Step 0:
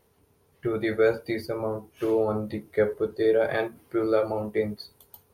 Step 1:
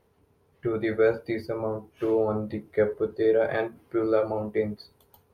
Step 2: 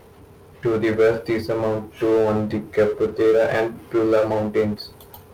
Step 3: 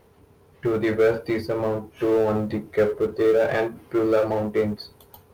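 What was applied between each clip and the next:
treble shelf 4.3 kHz -11 dB
power-law waveshaper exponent 0.7; trim +3 dB
companding laws mixed up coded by A; trim -2 dB

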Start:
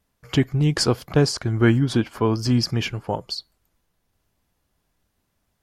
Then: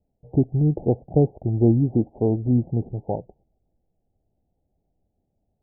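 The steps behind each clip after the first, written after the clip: steep low-pass 820 Hz 96 dB/octave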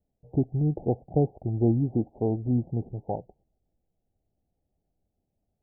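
dynamic bell 760 Hz, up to +5 dB, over -44 dBFS, Q 4.7; trim -5.5 dB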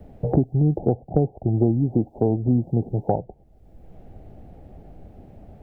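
three bands compressed up and down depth 100%; trim +5 dB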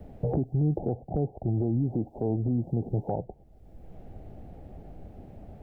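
peak limiter -18 dBFS, peak gain reduction 11 dB; trim -1 dB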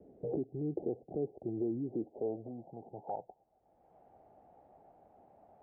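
band-pass sweep 380 Hz -> 870 Hz, 2.00–2.76 s; trim -2 dB

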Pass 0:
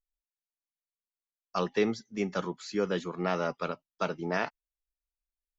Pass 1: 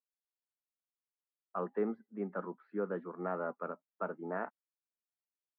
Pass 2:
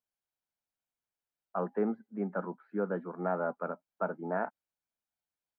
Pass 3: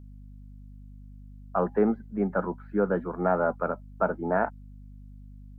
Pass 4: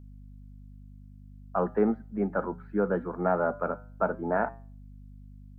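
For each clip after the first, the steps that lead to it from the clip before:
elliptic band-pass 200–1500 Hz, stop band 60 dB; trim -6 dB
treble shelf 2.2 kHz -9.5 dB; comb 1.3 ms, depth 32%; trim +5.5 dB
hum 50 Hz, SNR 16 dB; trim +7.5 dB
flange 0.44 Hz, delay 8 ms, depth 1.6 ms, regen -87%; trim +3 dB

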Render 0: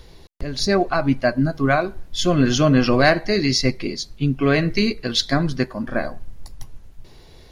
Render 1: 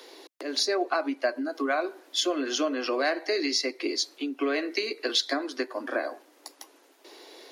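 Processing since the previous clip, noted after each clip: compression 6:1, threshold -25 dBFS, peak gain reduction 14.5 dB; steep high-pass 280 Hz 72 dB/octave; trim +3 dB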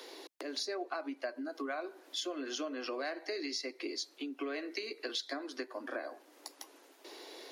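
compression 2:1, threshold -43 dBFS, peak gain reduction 12.5 dB; trim -1 dB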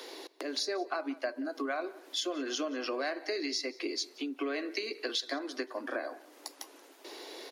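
echo from a far wall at 31 m, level -20 dB; trim +4 dB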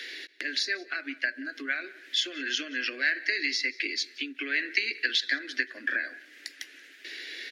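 FFT filter 190 Hz 0 dB, 580 Hz -13 dB, 1 kHz -24 dB, 1.7 kHz +15 dB, 11 kHz -7 dB; endings held to a fixed fall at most 530 dB/s; trim +1.5 dB

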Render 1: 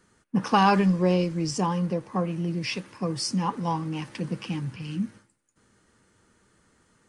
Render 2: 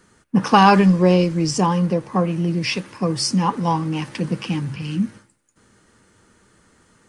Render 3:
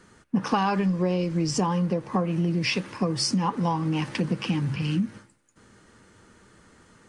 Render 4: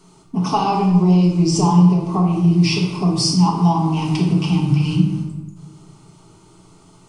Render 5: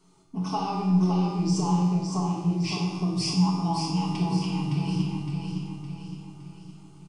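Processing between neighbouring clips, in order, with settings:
de-hum 70.37 Hz, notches 2; trim +7.5 dB
treble shelf 9.3 kHz -9.5 dB; compression 6:1, threshold -23 dBFS, peak gain reduction 14.5 dB; trim +1.5 dB
static phaser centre 340 Hz, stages 8; simulated room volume 470 m³, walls mixed, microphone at 1.5 m; trim +5.5 dB
feedback comb 93 Hz, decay 1.2 s, harmonics all, mix 80%; feedback delay 563 ms, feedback 47%, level -5 dB

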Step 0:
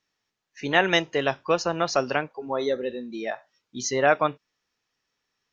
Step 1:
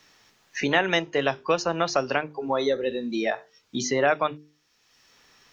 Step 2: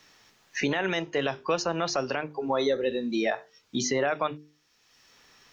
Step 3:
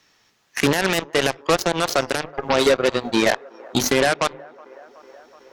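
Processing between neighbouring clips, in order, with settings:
hum notches 50/100/150/200/250/300/350/400/450 Hz; three bands compressed up and down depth 70%
peak limiter -15.5 dBFS, peak gain reduction 10 dB
Chebyshev shaper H 5 -13 dB, 7 -9 dB, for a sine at -15 dBFS; feedback echo behind a band-pass 373 ms, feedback 76%, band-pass 770 Hz, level -23 dB; trim +7 dB

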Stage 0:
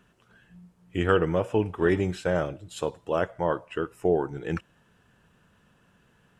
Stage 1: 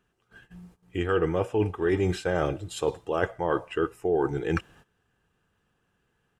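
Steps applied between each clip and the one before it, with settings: gate -57 dBFS, range -17 dB; comb 2.5 ms, depth 35%; reverse; compression 6:1, threshold -29 dBFS, peak gain reduction 13 dB; reverse; trim +7 dB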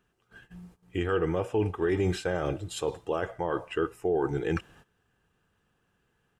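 peak limiter -18 dBFS, peak gain reduction 7.5 dB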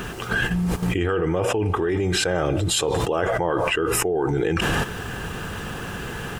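level flattener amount 100%; trim +1.5 dB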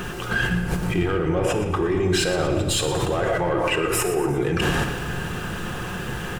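saturation -16 dBFS, distortion -18 dB; on a send: frequency-shifting echo 118 ms, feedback 50%, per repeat -37 Hz, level -12.5 dB; on the sum: simulated room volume 1200 m³, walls mixed, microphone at 0.93 m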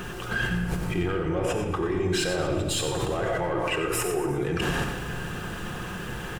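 delay 91 ms -9.5 dB; trim -5 dB

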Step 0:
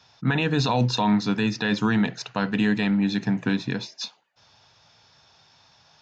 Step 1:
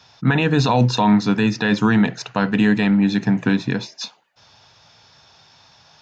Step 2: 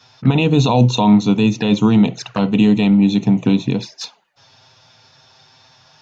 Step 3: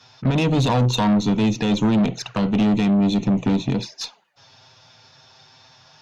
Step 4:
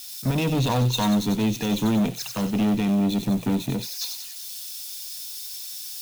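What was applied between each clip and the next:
dynamic bell 4.1 kHz, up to -4 dB, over -43 dBFS, Q 1; trim +6 dB
touch-sensitive flanger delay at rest 8.6 ms, full sweep at -17.5 dBFS; trim +4 dB
valve stage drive 14 dB, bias 0.3
zero-crossing glitches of -25.5 dBFS; feedback echo behind a high-pass 94 ms, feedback 62%, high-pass 3.6 kHz, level -4 dB; three bands expanded up and down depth 40%; trim -4 dB

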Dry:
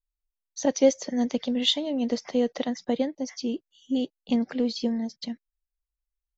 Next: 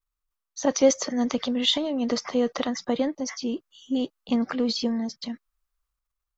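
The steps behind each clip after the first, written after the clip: peaking EQ 1.2 kHz +12 dB 0.56 oct; transient shaper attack 0 dB, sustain +7 dB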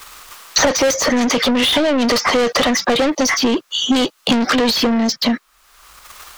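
overdrive pedal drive 33 dB, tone 5.6 kHz, clips at -7 dBFS; three bands compressed up and down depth 100%; trim -1 dB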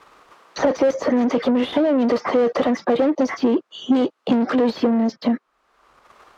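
band-pass filter 370 Hz, Q 0.78

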